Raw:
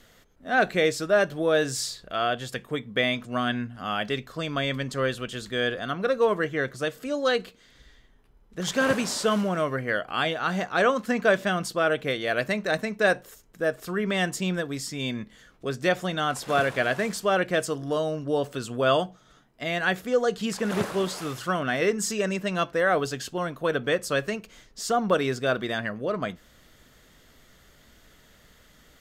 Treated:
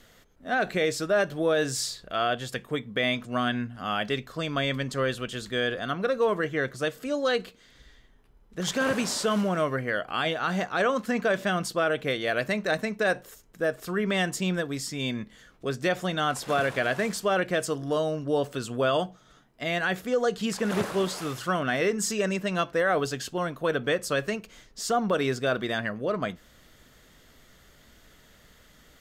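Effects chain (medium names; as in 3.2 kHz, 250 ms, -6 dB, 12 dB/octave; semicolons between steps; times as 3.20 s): peak limiter -15.5 dBFS, peak gain reduction 7 dB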